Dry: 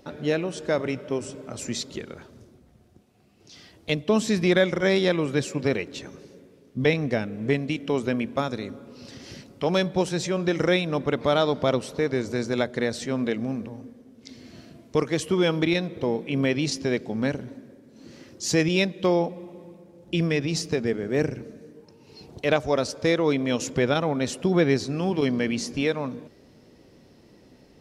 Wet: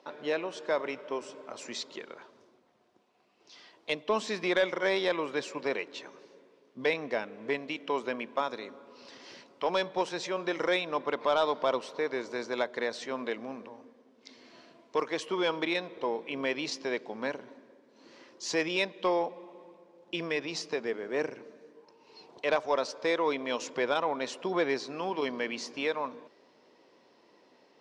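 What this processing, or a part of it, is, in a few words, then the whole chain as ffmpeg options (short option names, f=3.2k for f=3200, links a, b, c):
intercom: -af "highpass=450,lowpass=4.9k,equalizer=f=1k:t=o:w=0.27:g=9,asoftclip=type=tanh:threshold=-12.5dB,volume=-3dB"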